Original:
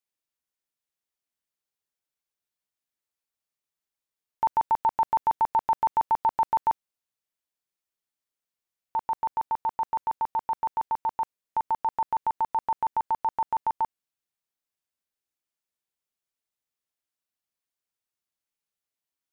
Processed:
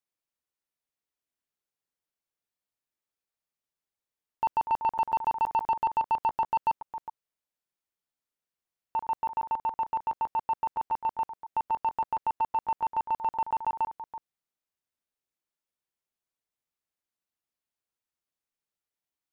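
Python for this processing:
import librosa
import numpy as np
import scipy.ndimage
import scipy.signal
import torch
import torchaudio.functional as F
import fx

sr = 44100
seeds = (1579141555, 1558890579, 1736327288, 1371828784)

y = fx.reverse_delay(x, sr, ms=273, wet_db=-13.0)
y = fx.high_shelf(y, sr, hz=2000.0, db=-5.0)
y = 10.0 ** (-19.0 / 20.0) * np.tanh(y / 10.0 ** (-19.0 / 20.0))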